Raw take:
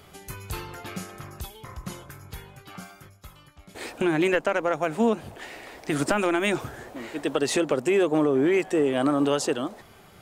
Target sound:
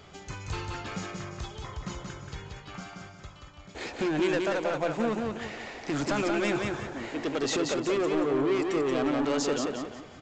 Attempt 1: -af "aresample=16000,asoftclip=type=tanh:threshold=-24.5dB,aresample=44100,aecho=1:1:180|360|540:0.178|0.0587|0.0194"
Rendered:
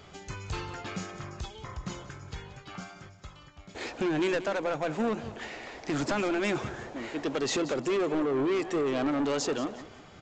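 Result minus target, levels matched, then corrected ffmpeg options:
echo-to-direct −11 dB
-af "aresample=16000,asoftclip=type=tanh:threshold=-24.5dB,aresample=44100,aecho=1:1:180|360|540|720:0.631|0.208|0.0687|0.0227"

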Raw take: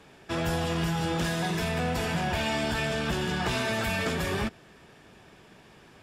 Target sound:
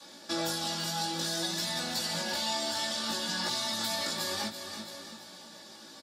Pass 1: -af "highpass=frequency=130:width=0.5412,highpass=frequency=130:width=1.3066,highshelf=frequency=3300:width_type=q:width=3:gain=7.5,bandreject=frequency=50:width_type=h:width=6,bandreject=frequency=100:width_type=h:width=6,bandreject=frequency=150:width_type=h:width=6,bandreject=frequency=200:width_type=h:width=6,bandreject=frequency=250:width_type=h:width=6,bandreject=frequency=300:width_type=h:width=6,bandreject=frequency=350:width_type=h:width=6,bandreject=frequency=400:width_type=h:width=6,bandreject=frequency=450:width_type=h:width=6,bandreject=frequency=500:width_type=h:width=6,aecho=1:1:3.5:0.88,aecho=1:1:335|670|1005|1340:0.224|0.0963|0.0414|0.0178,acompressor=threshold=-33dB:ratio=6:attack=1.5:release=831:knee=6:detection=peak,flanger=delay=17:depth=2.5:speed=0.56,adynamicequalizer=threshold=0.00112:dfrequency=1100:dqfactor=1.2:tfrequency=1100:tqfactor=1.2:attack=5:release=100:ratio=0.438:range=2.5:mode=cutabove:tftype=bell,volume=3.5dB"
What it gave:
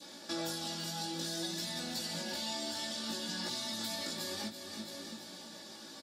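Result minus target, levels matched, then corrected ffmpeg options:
downward compressor: peak gain reduction +6 dB; 250 Hz band +4.0 dB
-af "highpass=frequency=130:width=0.5412,highpass=frequency=130:width=1.3066,highshelf=frequency=3300:width_type=q:width=3:gain=7.5,bandreject=frequency=50:width_type=h:width=6,bandreject=frequency=100:width_type=h:width=6,bandreject=frequency=150:width_type=h:width=6,bandreject=frequency=200:width_type=h:width=6,bandreject=frequency=250:width_type=h:width=6,bandreject=frequency=300:width_type=h:width=6,bandreject=frequency=350:width_type=h:width=6,bandreject=frequency=400:width_type=h:width=6,bandreject=frequency=450:width_type=h:width=6,bandreject=frequency=500:width_type=h:width=6,aecho=1:1:3.5:0.88,aecho=1:1:335|670|1005|1340:0.224|0.0963|0.0414|0.0178,acompressor=threshold=-26dB:ratio=6:attack=1.5:release=831:knee=6:detection=peak,flanger=delay=17:depth=2.5:speed=0.56,adynamicequalizer=threshold=0.00112:dfrequency=280:dqfactor=1.2:tfrequency=280:tqfactor=1.2:attack=5:release=100:ratio=0.438:range=2.5:mode=cutabove:tftype=bell,volume=3.5dB"

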